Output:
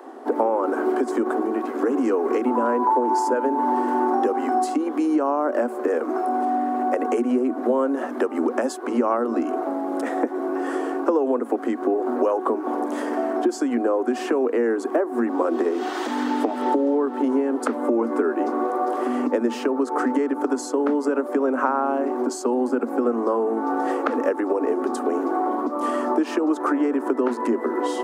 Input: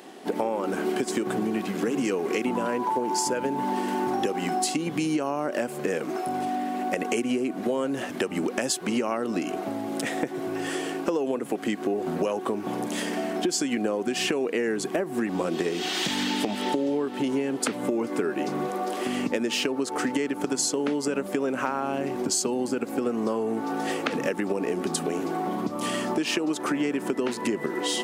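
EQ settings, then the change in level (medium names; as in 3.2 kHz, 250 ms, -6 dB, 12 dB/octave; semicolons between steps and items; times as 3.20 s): Chebyshev high-pass 230 Hz, order 10; resonant high shelf 1.8 kHz -13.5 dB, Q 1.5; +5.5 dB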